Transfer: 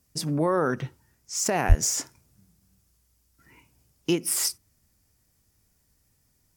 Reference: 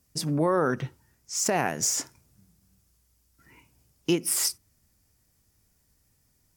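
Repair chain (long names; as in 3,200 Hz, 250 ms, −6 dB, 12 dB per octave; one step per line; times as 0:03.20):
0:01.68–0:01.80: high-pass filter 140 Hz 24 dB per octave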